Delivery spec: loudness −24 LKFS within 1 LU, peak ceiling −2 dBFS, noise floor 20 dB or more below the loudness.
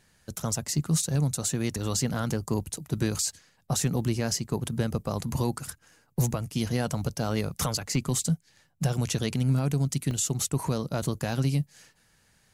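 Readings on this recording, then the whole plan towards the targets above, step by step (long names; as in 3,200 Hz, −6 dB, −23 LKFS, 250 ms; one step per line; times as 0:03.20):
number of dropouts 1; longest dropout 1.2 ms; integrated loudness −28.5 LKFS; sample peak −15.5 dBFS; target loudness −24.0 LKFS
→ repair the gap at 0:10.11, 1.2 ms
level +4.5 dB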